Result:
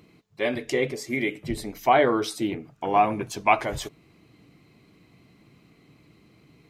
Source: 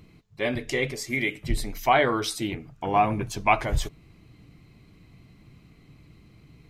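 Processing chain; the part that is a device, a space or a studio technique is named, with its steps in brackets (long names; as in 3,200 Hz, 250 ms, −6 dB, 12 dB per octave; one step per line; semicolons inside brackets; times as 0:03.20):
filter by subtraction (in parallel: low-pass filter 370 Hz 12 dB per octave + polarity inversion)
0:00.72–0:02.65: on the sum: tilt shelving filter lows +3.5 dB, about 790 Hz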